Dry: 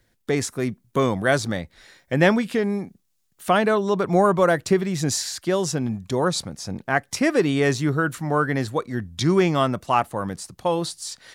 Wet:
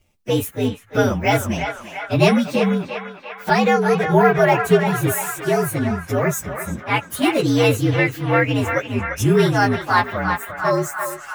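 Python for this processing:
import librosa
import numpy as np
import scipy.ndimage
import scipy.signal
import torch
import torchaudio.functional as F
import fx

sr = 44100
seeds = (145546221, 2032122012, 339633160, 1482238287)

y = fx.partial_stretch(x, sr, pct=119)
y = fx.echo_banded(y, sr, ms=345, feedback_pct=77, hz=1500.0, wet_db=-5.0)
y = y * librosa.db_to_amplitude(5.5)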